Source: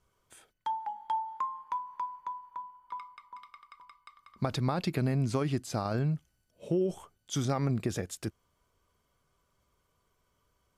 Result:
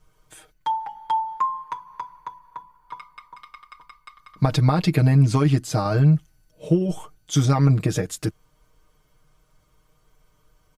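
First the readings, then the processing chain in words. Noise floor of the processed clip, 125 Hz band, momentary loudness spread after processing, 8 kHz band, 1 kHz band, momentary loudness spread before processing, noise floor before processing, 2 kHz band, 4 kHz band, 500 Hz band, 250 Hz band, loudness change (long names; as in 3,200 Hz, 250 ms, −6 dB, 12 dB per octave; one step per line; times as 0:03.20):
−63 dBFS, +14.0 dB, 18 LU, +8.5 dB, +8.0 dB, 17 LU, −76 dBFS, +9.0 dB, +9.0 dB, +6.5 dB, +10.5 dB, +12.0 dB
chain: low-shelf EQ 77 Hz +11.5 dB
comb filter 6.5 ms, depth 97%
level +6 dB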